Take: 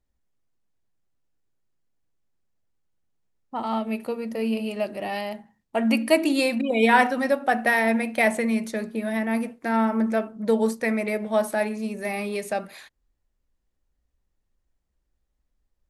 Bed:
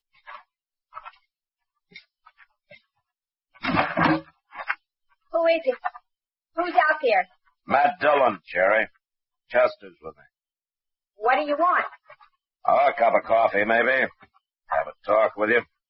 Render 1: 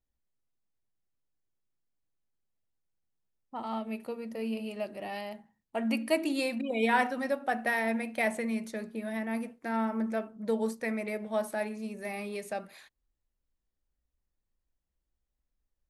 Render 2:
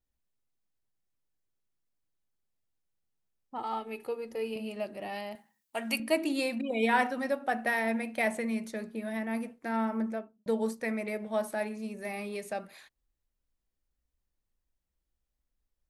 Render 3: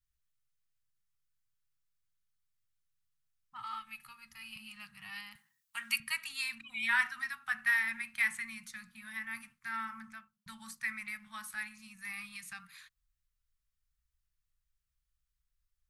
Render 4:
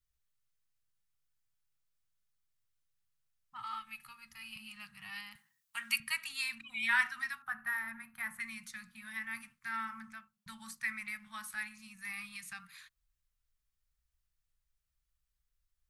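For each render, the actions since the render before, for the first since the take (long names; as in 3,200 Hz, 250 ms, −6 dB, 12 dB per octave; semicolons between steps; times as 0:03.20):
level −8.5 dB
0:03.58–0:04.56: comb filter 2.4 ms; 0:05.35–0:06.00: spectral tilt +3.5 dB per octave; 0:09.98–0:10.46: fade out and dull
elliptic band-stop filter 150–1,200 Hz, stop band 50 dB; dynamic equaliser 1,900 Hz, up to +4 dB, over −45 dBFS, Q 2.8
0:07.42–0:08.40: flat-topped bell 4,200 Hz −14.5 dB 2.4 octaves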